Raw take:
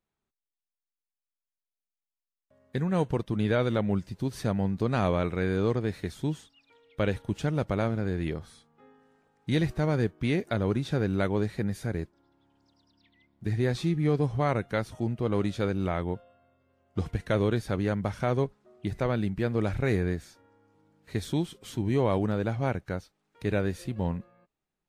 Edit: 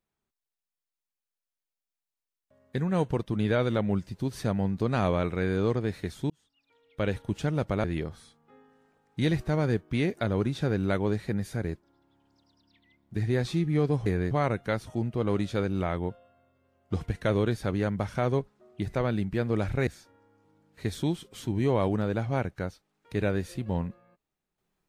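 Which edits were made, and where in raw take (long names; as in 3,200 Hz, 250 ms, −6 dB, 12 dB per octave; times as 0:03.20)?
0:06.30–0:07.18: fade in
0:07.84–0:08.14: remove
0:19.92–0:20.17: move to 0:14.36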